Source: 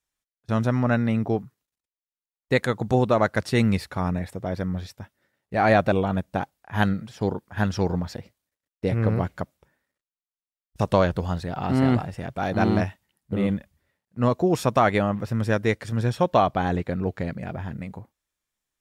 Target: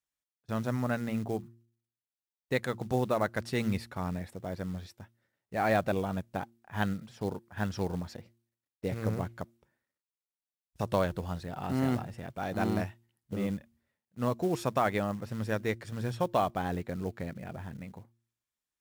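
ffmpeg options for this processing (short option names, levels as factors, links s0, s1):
-af "highpass=f=49:p=1,acrusher=bits=6:mode=log:mix=0:aa=0.000001,bandreject=f=115.7:t=h:w=4,bandreject=f=231.4:t=h:w=4,bandreject=f=347.1:t=h:w=4,volume=0.376"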